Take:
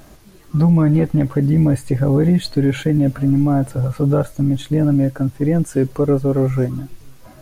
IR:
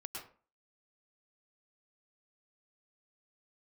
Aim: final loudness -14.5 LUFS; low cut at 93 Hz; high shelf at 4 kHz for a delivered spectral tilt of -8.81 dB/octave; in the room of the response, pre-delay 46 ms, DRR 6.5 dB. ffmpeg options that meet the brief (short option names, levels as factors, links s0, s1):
-filter_complex "[0:a]highpass=93,highshelf=f=4000:g=7.5,asplit=2[s0][s1];[1:a]atrim=start_sample=2205,adelay=46[s2];[s1][s2]afir=irnorm=-1:irlink=0,volume=0.596[s3];[s0][s3]amix=inputs=2:normalize=0,volume=1.26"